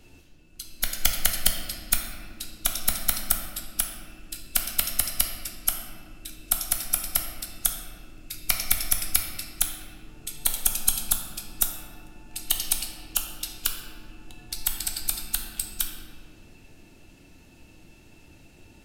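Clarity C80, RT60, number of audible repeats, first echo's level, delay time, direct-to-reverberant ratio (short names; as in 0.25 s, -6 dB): 6.0 dB, 1.8 s, none, none, none, 2.0 dB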